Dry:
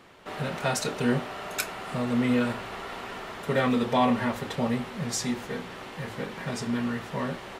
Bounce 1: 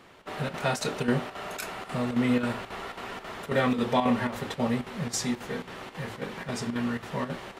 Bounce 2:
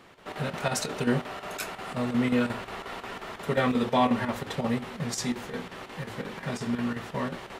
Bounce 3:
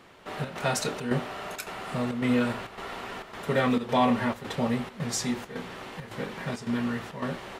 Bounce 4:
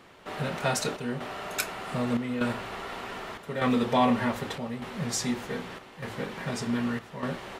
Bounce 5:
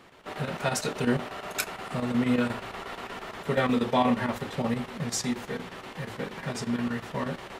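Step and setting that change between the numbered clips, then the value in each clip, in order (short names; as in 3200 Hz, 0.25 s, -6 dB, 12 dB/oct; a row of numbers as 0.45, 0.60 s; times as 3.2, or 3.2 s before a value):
chopper, rate: 3.7, 5.6, 1.8, 0.83, 8.4 Hz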